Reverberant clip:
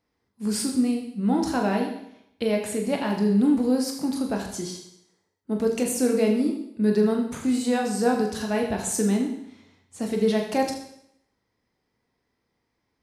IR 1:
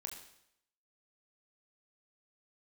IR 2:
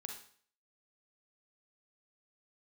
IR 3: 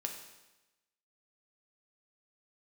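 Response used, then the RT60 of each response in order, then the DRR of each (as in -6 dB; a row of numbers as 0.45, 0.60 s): 1; 0.75, 0.50, 1.0 s; 1.5, 2.5, 2.5 dB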